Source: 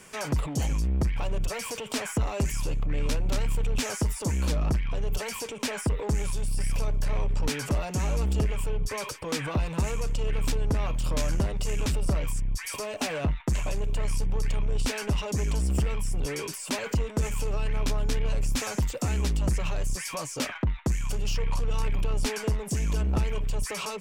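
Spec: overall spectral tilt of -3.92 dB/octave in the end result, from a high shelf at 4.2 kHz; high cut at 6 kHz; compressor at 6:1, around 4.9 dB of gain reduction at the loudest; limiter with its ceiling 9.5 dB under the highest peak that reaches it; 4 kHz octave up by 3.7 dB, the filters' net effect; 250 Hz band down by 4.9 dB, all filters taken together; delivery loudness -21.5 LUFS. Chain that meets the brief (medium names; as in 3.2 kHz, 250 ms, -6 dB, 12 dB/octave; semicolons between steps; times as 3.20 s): low-pass 6 kHz; peaking EQ 250 Hz -7 dB; peaking EQ 4 kHz +3.5 dB; treble shelf 4.2 kHz +4.5 dB; compression 6:1, threshold -28 dBFS; trim +14 dB; peak limiter -13 dBFS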